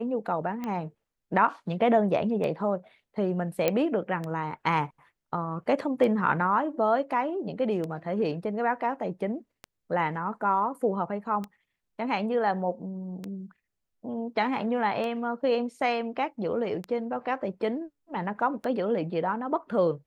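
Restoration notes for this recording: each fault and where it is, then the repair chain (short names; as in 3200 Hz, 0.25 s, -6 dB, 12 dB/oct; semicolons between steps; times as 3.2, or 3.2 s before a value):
tick 33 1/3 rpm -21 dBFS
3.68 pop -10 dBFS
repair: de-click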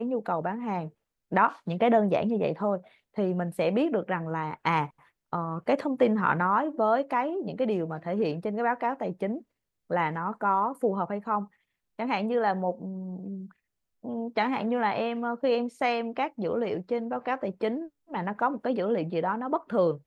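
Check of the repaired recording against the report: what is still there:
none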